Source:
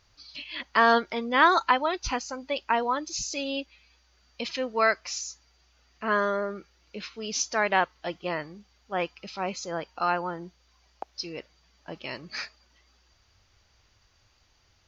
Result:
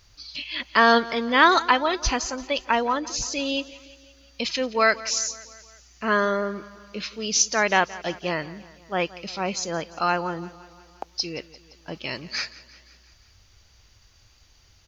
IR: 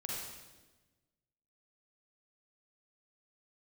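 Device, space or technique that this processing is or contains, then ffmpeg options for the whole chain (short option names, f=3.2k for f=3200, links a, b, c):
smiley-face EQ: -filter_complex "[0:a]lowshelf=f=89:g=6,equalizer=f=890:t=o:w=1.8:g=-3,highshelf=f=6k:g=8,asettb=1/sr,asplit=3[a][b][c];[a]atrim=end=2.934[d];[b]atrim=start=2.93:end=3.45,asetpts=PTS-STARTPTS,afade=t=in:d=0.004:c=qsin,afade=t=out:st=0.516:d=0.004:c=qsin,aemphasis=mode=reproduction:type=cd[e];[c]atrim=start=3.446[f];[d][e]acrossfade=d=0.004:c1=hsin:c2=qsin[g];[g][f]acrossfade=d=0.004:c1=qsin:c2=hsin,aecho=1:1:173|346|519|692|865:0.112|0.0673|0.0404|0.0242|0.0145,volume=5dB"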